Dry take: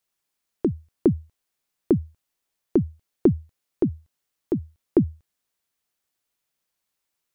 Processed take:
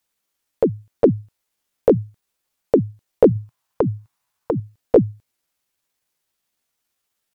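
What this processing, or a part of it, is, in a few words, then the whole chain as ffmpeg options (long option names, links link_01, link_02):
chipmunk voice: -filter_complex "[0:a]asetrate=58866,aresample=44100,atempo=0.749154,asettb=1/sr,asplit=3[link_01][link_02][link_03];[link_01]atrim=end=3.354[link_04];[link_02]atrim=start=3.35:end=4.6,asetpts=PTS-STARTPTS,afade=type=in:duration=0.004:curve=qsin,afade=type=out:start_time=1.246:duration=0.004:curve=qsin,equalizer=frequency=125:width_type=o:width=1:gain=6,equalizer=frequency=250:width_type=o:width=1:gain=-4,equalizer=frequency=500:width_type=o:width=1:gain=-4,equalizer=frequency=1000:width_type=o:width=1:gain=11[link_05];[link_03]atrim=start=4.596[link_06];[link_04][link_05]acrossfade=duration=0.004:curve1=hsin:curve2=qsin[link_07];[link_07][link_06]acrossfade=duration=0.004:curve1=qsin:curve2=hsin,volume=5.5dB"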